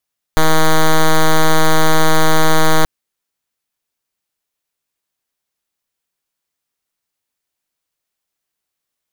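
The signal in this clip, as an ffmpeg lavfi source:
-f lavfi -i "aevalsrc='0.376*(2*lt(mod(158*t,1),0.06)-1)':d=2.48:s=44100"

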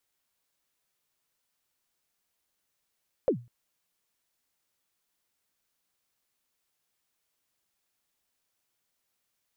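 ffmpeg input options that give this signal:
-f lavfi -i "aevalsrc='0.141*pow(10,-3*t/0.3)*sin(2*PI*(590*0.092/log(120/590)*(exp(log(120/590)*min(t,0.092)/0.092)-1)+120*max(t-0.092,0)))':d=0.2:s=44100"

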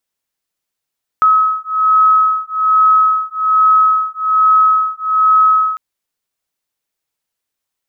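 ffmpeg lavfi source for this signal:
-f lavfi -i "aevalsrc='0.251*(sin(2*PI*1280*t)+sin(2*PI*1281.2*t))':d=4.55:s=44100"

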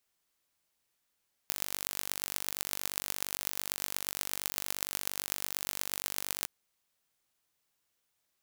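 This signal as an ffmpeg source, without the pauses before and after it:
-f lavfi -i "aevalsrc='0.668*eq(mod(n,906),0)*(0.5+0.5*eq(mod(n,5436),0))':d=4.96:s=44100"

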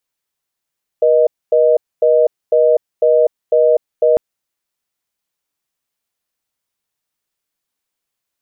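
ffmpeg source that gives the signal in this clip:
-f lavfi -i "aevalsrc='0.282*(sin(2*PI*480*t)+sin(2*PI*620*t))*clip(min(mod(t,0.5),0.25-mod(t,0.5))/0.005,0,1)':d=3.15:s=44100"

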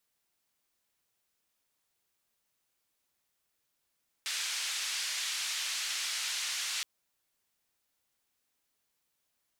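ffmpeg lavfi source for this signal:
-f lavfi -i "anoisesrc=c=white:d=2.57:r=44100:seed=1,highpass=f=1900,lowpass=f=6100,volume=-23.2dB"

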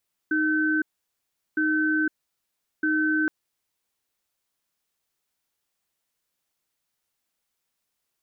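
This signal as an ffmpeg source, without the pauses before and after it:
-f lavfi -i "aevalsrc='0.0708*(sin(2*PI*310*t)+sin(2*PI*1530*t))*clip(min(mod(t,1.26),0.51-mod(t,1.26))/0.005,0,1)':d=2.97:s=44100"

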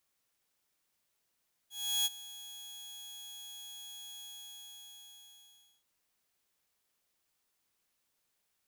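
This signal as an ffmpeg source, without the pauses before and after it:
-f lavfi -i "aevalsrc='0.0596*(2*mod(3330*t,1)-1)':d=4.14:s=44100,afade=t=in:d=0.356,afade=t=out:st=0.356:d=0.03:silence=0.119,afade=t=out:st=2.49:d=1.65"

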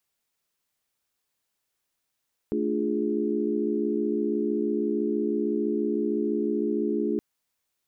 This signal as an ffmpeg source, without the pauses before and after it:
-f lavfi -i "aevalsrc='0.0355*(sin(2*PI*220*t)+sin(2*PI*293.66*t)+sin(2*PI*349.23*t)+sin(2*PI*415.3*t))':d=4.67:s=44100"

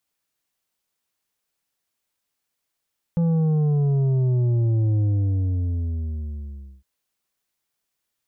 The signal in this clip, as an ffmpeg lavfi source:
-f lavfi -i "aevalsrc='0.126*clip((3.66-t)/1.83,0,1)*tanh(2.24*sin(2*PI*170*3.66/log(65/170)*(exp(log(65/170)*t/3.66)-1)))/tanh(2.24)':d=3.66:s=44100"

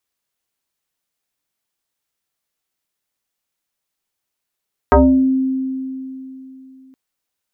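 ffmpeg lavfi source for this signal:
-f lavfi -i "aevalsrc='0.531*pow(10,-3*t/3.22)*sin(2*PI*263*t+3.6*pow(10,-3*t/0.48)*sin(2*PI*1.26*263*t))':d=2.02:s=44100"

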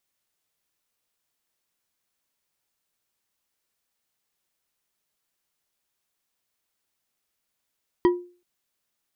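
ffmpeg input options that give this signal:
-f lavfi -i "aevalsrc='0.251*pow(10,-3*t/0.38)*sin(2*PI*354*t)+0.1*pow(10,-3*t/0.187)*sin(2*PI*976*t)+0.0398*pow(10,-3*t/0.117)*sin(2*PI*1913*t)+0.0158*pow(10,-3*t/0.082)*sin(2*PI*3162.3*t)+0.00631*pow(10,-3*t/0.062)*sin(2*PI*4722.4*t)':d=0.38:s=44100"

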